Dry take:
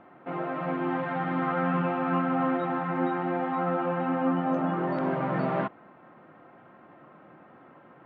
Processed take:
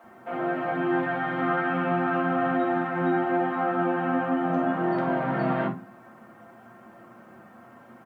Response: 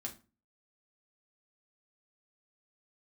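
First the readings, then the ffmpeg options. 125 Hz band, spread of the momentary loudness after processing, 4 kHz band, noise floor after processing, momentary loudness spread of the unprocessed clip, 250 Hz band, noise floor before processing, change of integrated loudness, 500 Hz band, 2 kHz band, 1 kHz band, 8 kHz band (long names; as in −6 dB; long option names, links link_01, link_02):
−0.5 dB, 4 LU, +3.5 dB, −51 dBFS, 5 LU, +2.0 dB, −54 dBFS, +2.5 dB, +3.0 dB, +6.0 dB, +2.5 dB, can't be measured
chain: -filter_complex "[0:a]acrusher=bits=11:mix=0:aa=0.000001,acrossover=split=360[link_01][link_02];[link_01]adelay=40[link_03];[link_03][link_02]amix=inputs=2:normalize=0[link_04];[1:a]atrim=start_sample=2205[link_05];[link_04][link_05]afir=irnorm=-1:irlink=0,volume=5dB"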